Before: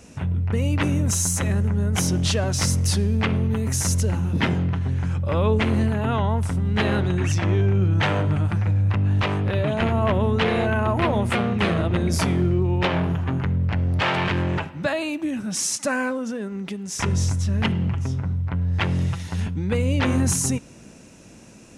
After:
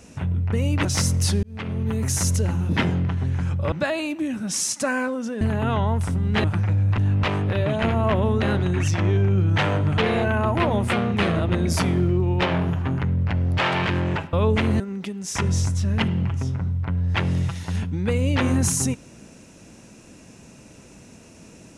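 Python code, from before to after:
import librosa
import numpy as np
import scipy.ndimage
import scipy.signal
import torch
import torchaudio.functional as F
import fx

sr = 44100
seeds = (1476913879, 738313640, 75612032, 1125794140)

y = fx.edit(x, sr, fx.cut(start_s=0.85, length_s=1.64),
    fx.fade_in_span(start_s=3.07, length_s=0.55),
    fx.swap(start_s=5.36, length_s=0.47, other_s=14.75, other_length_s=1.69),
    fx.move(start_s=6.86, length_s=1.56, to_s=10.4),
    fx.reverse_span(start_s=8.96, length_s=0.25), tone=tone)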